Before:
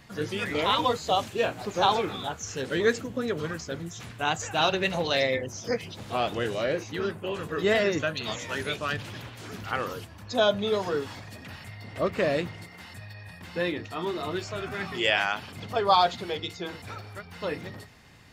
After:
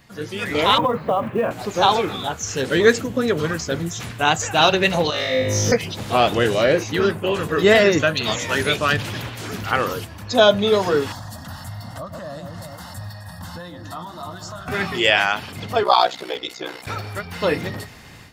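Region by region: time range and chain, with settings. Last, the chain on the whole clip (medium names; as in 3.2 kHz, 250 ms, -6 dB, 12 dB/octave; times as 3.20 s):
0.78–1.51 s: cabinet simulation 100–2200 Hz, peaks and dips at 140 Hz +10 dB, 220 Hz +9 dB, 550 Hz +7 dB, 1.1 kHz +8 dB + compression 10:1, threshold -23 dBFS + companded quantiser 8-bit
5.10–5.72 s: compression 12:1, threshold -33 dBFS + flutter echo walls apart 3.3 m, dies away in 0.95 s
11.12–14.68 s: echo whose repeats swap between lows and highs 130 ms, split 920 Hz, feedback 53%, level -9 dB + compression 5:1, threshold -37 dBFS + static phaser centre 980 Hz, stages 4
15.83–16.87 s: high-pass 320 Hz + ring modulator 31 Hz
whole clip: level rider gain up to 11.5 dB; treble shelf 11 kHz +5.5 dB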